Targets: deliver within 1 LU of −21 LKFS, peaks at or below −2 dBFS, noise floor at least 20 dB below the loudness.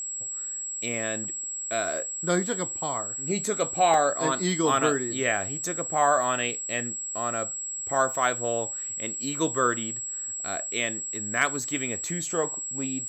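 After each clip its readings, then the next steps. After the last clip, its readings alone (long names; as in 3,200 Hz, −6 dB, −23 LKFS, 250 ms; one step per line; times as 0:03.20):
number of dropouts 1; longest dropout 1.2 ms; interfering tone 7,700 Hz; level of the tone −31 dBFS; integrated loudness −26.5 LKFS; sample peak −7.5 dBFS; target loudness −21.0 LKFS
→ repair the gap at 0:03.94, 1.2 ms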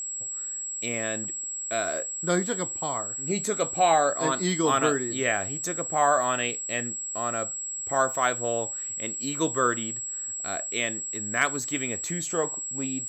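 number of dropouts 0; interfering tone 7,700 Hz; level of the tone −31 dBFS
→ notch filter 7,700 Hz, Q 30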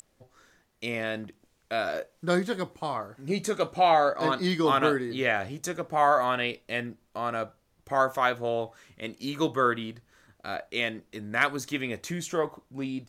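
interfering tone none found; integrated loudness −28.0 LKFS; sample peak −8.0 dBFS; target loudness −21.0 LKFS
→ level +7 dB
brickwall limiter −2 dBFS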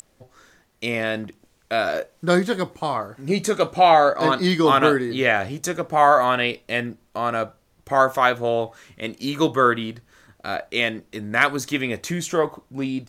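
integrated loudness −21.0 LKFS; sample peak −2.0 dBFS; background noise floor −62 dBFS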